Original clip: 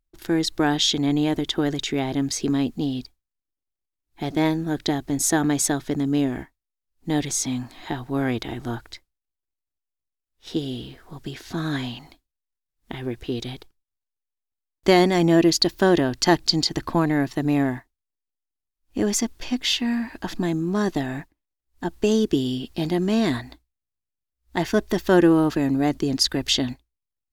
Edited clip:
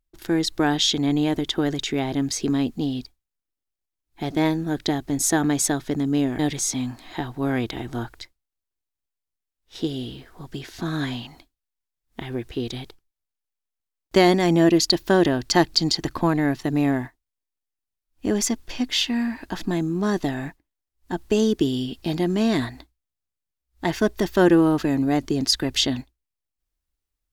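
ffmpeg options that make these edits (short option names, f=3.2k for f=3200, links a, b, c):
-filter_complex "[0:a]asplit=2[a][b];[a]atrim=end=6.392[c];[b]atrim=start=7.108[d];[c][d]acrossfade=d=0.004:c1=hsin:c2=hsin"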